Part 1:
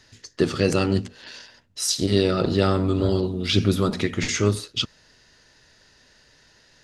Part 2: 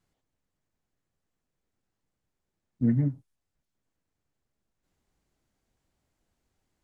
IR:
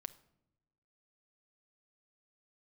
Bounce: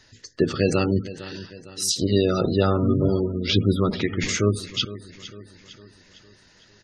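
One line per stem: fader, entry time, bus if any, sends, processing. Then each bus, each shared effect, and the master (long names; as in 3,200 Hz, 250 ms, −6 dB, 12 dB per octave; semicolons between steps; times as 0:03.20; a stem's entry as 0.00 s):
0.0 dB, 0.00 s, no send, echo send −16 dB, no processing
−1.5 dB, 0.00 s, no send, no echo send, no processing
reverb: not used
echo: repeating echo 456 ms, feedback 50%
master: gate on every frequency bin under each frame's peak −25 dB strong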